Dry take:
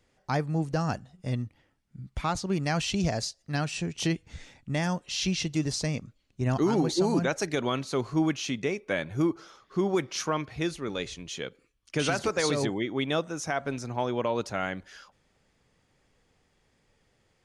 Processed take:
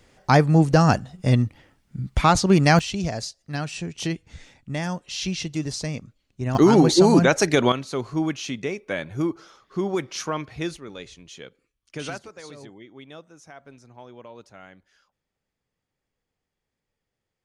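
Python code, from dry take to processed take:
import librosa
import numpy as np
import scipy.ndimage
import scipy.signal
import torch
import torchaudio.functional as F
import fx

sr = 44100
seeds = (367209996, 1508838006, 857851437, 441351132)

y = fx.gain(x, sr, db=fx.steps((0.0, 12.0), (2.79, 0.5), (6.55, 10.0), (7.72, 1.0), (10.77, -5.5), (12.18, -15.0)))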